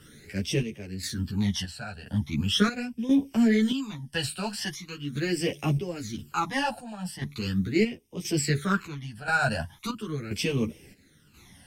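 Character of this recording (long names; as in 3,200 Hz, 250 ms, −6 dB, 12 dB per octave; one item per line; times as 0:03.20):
phaser sweep stages 12, 0.4 Hz, lowest notch 350–1,400 Hz
chopped level 0.97 Hz, depth 65%, duty 60%
a shimmering, thickened sound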